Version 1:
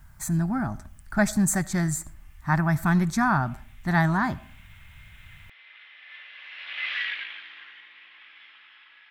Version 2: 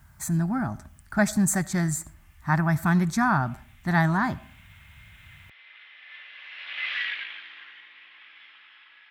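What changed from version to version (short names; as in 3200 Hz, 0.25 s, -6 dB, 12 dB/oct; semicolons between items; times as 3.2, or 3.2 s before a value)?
master: add HPF 55 Hz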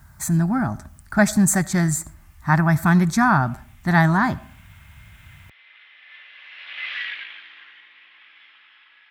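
speech +5.5 dB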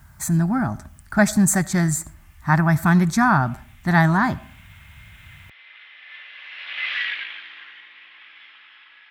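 background +4.0 dB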